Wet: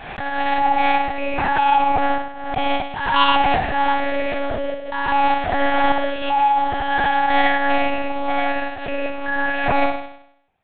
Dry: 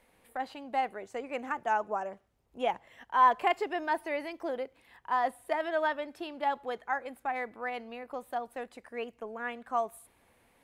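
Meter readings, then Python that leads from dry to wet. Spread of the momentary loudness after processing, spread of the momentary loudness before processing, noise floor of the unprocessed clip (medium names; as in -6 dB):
9 LU, 11 LU, -68 dBFS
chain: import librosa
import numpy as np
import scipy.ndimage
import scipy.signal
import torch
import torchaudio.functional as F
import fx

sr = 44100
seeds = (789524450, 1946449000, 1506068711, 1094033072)

y = fx.spec_steps(x, sr, hold_ms=200)
y = y + 0.71 * np.pad(y, (int(1.2 * sr / 1000.0), 0))[:len(y)]
y = fx.rider(y, sr, range_db=4, speed_s=2.0)
y = fx.leveller(y, sr, passes=5)
y = fx.room_flutter(y, sr, wall_m=9.0, rt60_s=0.71)
y = fx.lpc_monotone(y, sr, seeds[0], pitch_hz=280.0, order=8)
y = fx.pre_swell(y, sr, db_per_s=59.0)
y = y * librosa.db_to_amplitude(-1.0)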